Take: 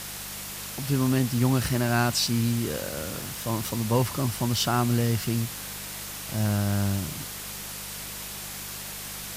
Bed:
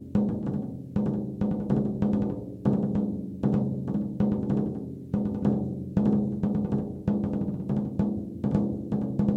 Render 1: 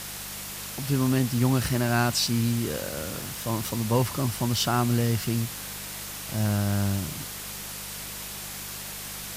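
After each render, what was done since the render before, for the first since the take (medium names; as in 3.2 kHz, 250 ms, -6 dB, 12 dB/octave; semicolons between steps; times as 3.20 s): no audible change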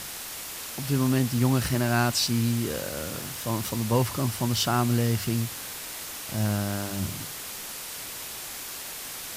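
de-hum 50 Hz, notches 4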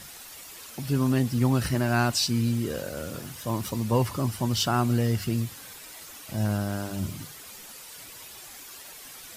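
noise reduction 10 dB, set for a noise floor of -38 dBFS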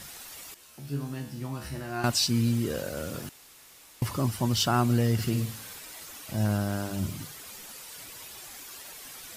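0.54–2.04 s: feedback comb 71 Hz, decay 0.54 s, mix 90%; 3.29–4.02 s: room tone; 5.13–5.80 s: flutter echo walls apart 9.3 m, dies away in 0.42 s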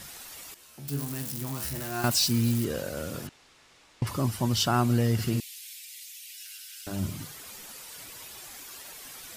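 0.88–2.65 s: zero-crossing glitches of -27 dBFS; 3.27–4.07 s: distance through air 100 m; 5.40–6.87 s: steep high-pass 2.2 kHz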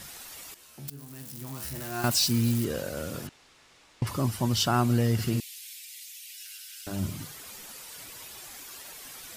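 0.90–2.13 s: fade in, from -15.5 dB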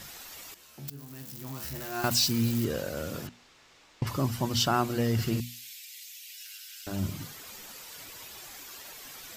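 peaking EQ 9.6 kHz -9.5 dB 0.27 oct; hum notches 60/120/180/240 Hz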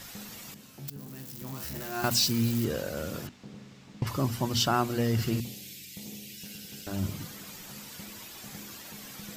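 add bed -22 dB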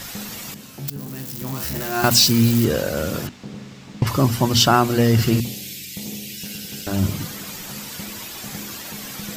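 trim +11 dB; peak limiter -3 dBFS, peak gain reduction 1.5 dB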